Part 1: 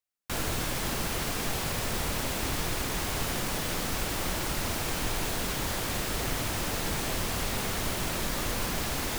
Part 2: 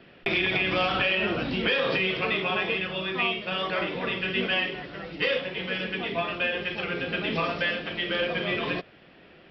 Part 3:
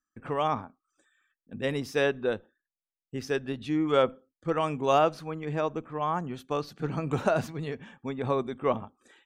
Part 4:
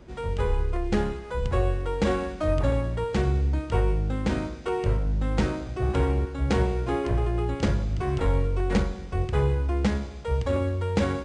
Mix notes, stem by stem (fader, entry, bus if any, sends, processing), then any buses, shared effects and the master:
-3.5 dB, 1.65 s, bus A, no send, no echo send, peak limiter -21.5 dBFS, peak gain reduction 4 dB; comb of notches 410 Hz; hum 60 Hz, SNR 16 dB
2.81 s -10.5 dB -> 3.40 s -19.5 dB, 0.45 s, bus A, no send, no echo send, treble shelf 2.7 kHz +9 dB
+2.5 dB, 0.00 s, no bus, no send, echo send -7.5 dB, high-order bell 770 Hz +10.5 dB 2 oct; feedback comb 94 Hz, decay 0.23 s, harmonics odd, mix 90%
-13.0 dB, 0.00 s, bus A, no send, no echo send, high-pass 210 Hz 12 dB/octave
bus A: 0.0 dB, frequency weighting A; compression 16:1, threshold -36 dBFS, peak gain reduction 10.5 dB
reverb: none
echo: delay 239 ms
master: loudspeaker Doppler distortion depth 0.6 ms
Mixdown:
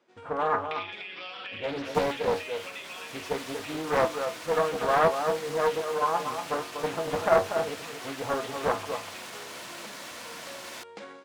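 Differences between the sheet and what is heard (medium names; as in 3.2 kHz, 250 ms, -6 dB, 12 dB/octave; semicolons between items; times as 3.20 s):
nothing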